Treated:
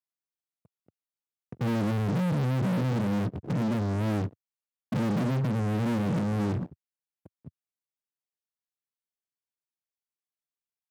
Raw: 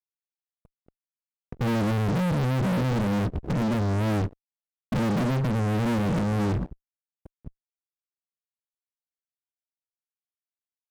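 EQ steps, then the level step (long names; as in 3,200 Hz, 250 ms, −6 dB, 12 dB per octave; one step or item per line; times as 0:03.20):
high-pass filter 100 Hz 24 dB per octave
low-shelf EQ 300 Hz +4.5 dB
−5.0 dB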